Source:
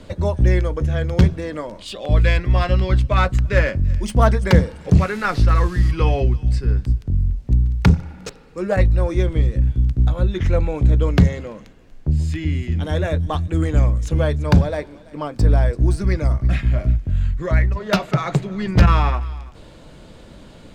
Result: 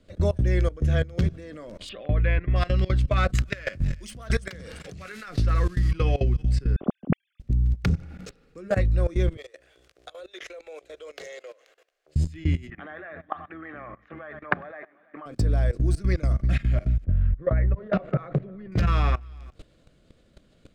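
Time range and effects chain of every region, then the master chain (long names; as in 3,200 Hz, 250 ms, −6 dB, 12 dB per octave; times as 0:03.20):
0:01.89–0:02.56: low-pass filter 2,500 Hz 24 dB per octave + one half of a high-frequency compander encoder only
0:03.35–0:05.29: tilt shelving filter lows −6 dB, about 850 Hz + compressor whose output falls as the input rises −21 dBFS
0:06.76–0:07.40: three sine waves on the formant tracks + parametric band 1,700 Hz −12 dB 2.2 octaves
0:09.37–0:12.16: inverse Chebyshev high-pass filter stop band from 240 Hz + dynamic equaliser 1,200 Hz, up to −6 dB, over −43 dBFS, Q 0.92
0:12.70–0:15.26: loudspeaker in its box 430–2,300 Hz, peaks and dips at 480 Hz −9 dB, 800 Hz +7 dB, 1,200 Hz +9 dB, 1,800 Hz +9 dB + single-tap delay 99 ms −17.5 dB
0:17.04–0:18.72: low-pass filter 1,400 Hz + parametric band 530 Hz +6.5 dB 0.34 octaves
whole clip: parametric band 910 Hz −13.5 dB 0.28 octaves; output level in coarse steps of 20 dB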